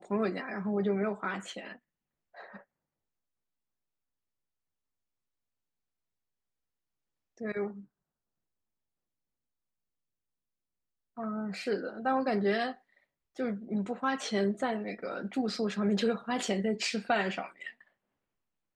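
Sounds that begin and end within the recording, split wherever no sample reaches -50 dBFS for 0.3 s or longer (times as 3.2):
2.35–2.62
7.38–7.85
11.17–12.76
13.36–17.82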